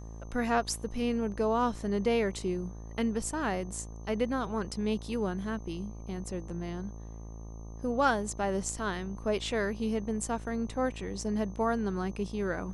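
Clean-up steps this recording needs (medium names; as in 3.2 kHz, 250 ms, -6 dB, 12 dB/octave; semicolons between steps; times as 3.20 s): de-hum 55.3 Hz, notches 22; band-stop 6.2 kHz, Q 30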